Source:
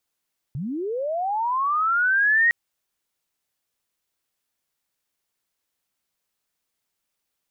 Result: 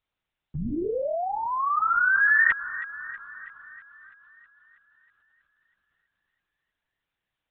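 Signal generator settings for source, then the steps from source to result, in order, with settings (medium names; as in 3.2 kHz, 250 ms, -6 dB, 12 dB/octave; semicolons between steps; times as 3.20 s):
sweep linear 120 Hz -> 1.9 kHz -26.5 dBFS -> -14.5 dBFS 1.96 s
dynamic bell 900 Hz, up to -5 dB, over -40 dBFS, Q 2.2; feedback echo behind a high-pass 323 ms, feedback 61%, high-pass 1.5 kHz, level -13 dB; LPC vocoder at 8 kHz whisper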